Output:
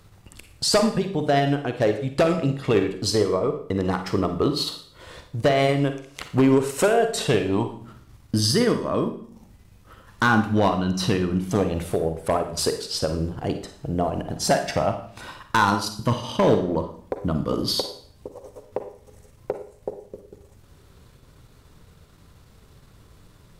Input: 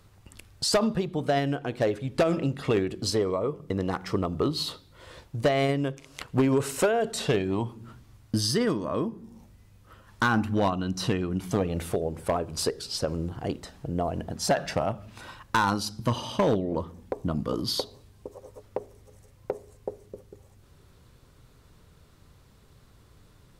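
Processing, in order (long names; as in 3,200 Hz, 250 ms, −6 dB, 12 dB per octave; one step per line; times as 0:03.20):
transient designer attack −2 dB, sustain −7 dB
four-comb reverb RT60 0.53 s, DRR 7 dB
level +5 dB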